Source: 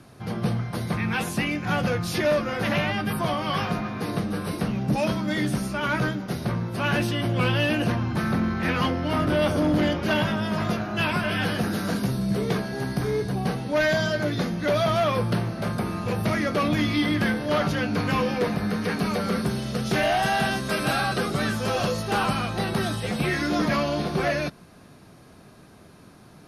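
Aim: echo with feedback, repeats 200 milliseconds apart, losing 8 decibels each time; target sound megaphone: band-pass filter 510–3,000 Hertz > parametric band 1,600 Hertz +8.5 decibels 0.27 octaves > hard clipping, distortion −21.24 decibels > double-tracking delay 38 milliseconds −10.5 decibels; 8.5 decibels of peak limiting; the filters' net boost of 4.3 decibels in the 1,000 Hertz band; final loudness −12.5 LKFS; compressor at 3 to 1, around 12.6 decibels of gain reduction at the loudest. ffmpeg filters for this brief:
ffmpeg -i in.wav -filter_complex "[0:a]equalizer=frequency=1000:width_type=o:gain=5.5,acompressor=threshold=-35dB:ratio=3,alimiter=level_in=5.5dB:limit=-24dB:level=0:latency=1,volume=-5.5dB,highpass=510,lowpass=3000,equalizer=frequency=1600:width_type=o:width=0.27:gain=8.5,aecho=1:1:200|400|600|800|1000:0.398|0.159|0.0637|0.0255|0.0102,asoftclip=type=hard:threshold=-31.5dB,asplit=2[link_01][link_02];[link_02]adelay=38,volume=-10.5dB[link_03];[link_01][link_03]amix=inputs=2:normalize=0,volume=26dB" out.wav

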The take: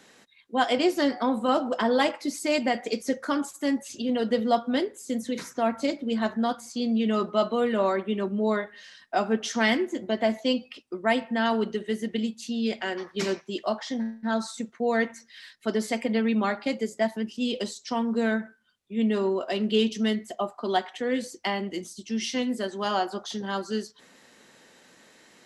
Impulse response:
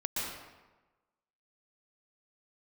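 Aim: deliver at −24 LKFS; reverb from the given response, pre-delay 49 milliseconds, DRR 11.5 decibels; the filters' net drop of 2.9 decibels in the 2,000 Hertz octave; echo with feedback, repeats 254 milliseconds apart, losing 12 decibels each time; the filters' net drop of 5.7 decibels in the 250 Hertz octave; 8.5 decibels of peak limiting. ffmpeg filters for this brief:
-filter_complex "[0:a]equalizer=frequency=250:width_type=o:gain=-6.5,equalizer=frequency=2000:width_type=o:gain=-3.5,alimiter=limit=-18.5dB:level=0:latency=1,aecho=1:1:254|508|762:0.251|0.0628|0.0157,asplit=2[link_01][link_02];[1:a]atrim=start_sample=2205,adelay=49[link_03];[link_02][link_03]afir=irnorm=-1:irlink=0,volume=-17dB[link_04];[link_01][link_04]amix=inputs=2:normalize=0,volume=7dB"

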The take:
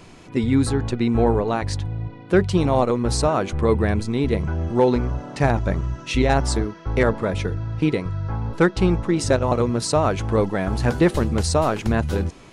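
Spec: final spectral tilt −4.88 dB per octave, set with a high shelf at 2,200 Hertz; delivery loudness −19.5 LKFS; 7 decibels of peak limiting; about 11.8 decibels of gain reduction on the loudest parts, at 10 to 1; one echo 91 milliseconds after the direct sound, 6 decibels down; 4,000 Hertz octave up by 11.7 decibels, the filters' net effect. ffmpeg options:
ffmpeg -i in.wav -af "highshelf=frequency=2200:gain=7,equalizer=frequency=4000:width_type=o:gain=7.5,acompressor=threshold=-24dB:ratio=10,alimiter=limit=-19dB:level=0:latency=1,aecho=1:1:91:0.501,volume=9.5dB" out.wav

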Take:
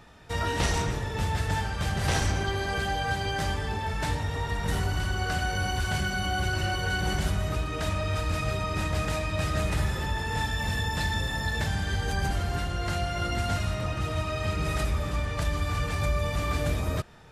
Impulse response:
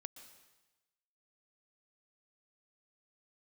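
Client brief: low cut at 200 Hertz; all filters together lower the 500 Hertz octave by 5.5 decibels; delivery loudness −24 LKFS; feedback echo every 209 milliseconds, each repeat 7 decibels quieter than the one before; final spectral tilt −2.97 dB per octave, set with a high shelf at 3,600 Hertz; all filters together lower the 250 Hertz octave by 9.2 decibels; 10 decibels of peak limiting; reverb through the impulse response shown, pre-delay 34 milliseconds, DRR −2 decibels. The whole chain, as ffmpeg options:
-filter_complex "[0:a]highpass=200,equalizer=frequency=250:width_type=o:gain=-8.5,equalizer=frequency=500:width_type=o:gain=-5,highshelf=frequency=3600:gain=-3.5,alimiter=level_in=2dB:limit=-24dB:level=0:latency=1,volume=-2dB,aecho=1:1:209|418|627|836|1045:0.447|0.201|0.0905|0.0407|0.0183,asplit=2[link_01][link_02];[1:a]atrim=start_sample=2205,adelay=34[link_03];[link_02][link_03]afir=irnorm=-1:irlink=0,volume=7dB[link_04];[link_01][link_04]amix=inputs=2:normalize=0,volume=6dB"

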